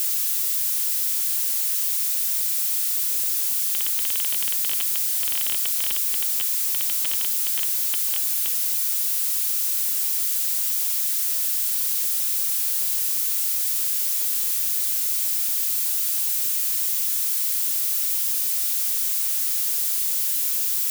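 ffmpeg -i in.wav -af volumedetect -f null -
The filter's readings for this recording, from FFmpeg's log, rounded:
mean_volume: -23.3 dB
max_volume: -13.8 dB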